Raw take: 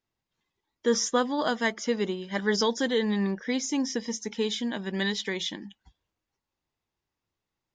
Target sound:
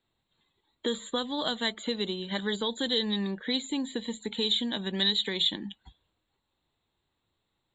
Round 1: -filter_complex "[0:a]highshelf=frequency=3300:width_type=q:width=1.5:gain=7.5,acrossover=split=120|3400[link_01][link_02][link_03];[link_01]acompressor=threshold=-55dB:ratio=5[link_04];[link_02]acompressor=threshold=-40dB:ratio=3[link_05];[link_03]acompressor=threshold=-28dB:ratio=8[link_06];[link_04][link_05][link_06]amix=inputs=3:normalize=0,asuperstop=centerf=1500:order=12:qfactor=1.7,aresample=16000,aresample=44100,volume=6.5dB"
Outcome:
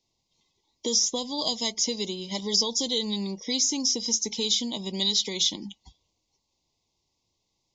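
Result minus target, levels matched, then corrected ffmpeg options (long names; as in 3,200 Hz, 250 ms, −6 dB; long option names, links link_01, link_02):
2,000 Hz band −11.0 dB
-filter_complex "[0:a]highshelf=frequency=3300:width_type=q:width=1.5:gain=7.5,acrossover=split=120|3400[link_01][link_02][link_03];[link_01]acompressor=threshold=-55dB:ratio=5[link_04];[link_02]acompressor=threshold=-40dB:ratio=3[link_05];[link_03]acompressor=threshold=-28dB:ratio=8[link_06];[link_04][link_05][link_06]amix=inputs=3:normalize=0,asuperstop=centerf=5600:order=12:qfactor=1.7,aresample=16000,aresample=44100,volume=6.5dB"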